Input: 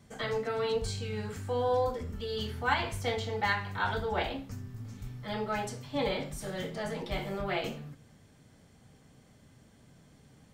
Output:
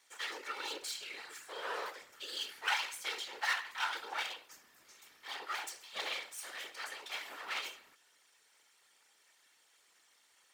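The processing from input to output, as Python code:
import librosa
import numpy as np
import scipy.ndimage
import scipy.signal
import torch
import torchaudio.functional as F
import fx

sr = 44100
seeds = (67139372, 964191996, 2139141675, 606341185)

y = fx.lower_of_two(x, sr, delay_ms=2.2)
y = scipy.signal.sosfilt(scipy.signal.butter(2, 1400.0, 'highpass', fs=sr, output='sos'), y)
y = fx.whisperise(y, sr, seeds[0])
y = y * librosa.db_to_amplitude(1.0)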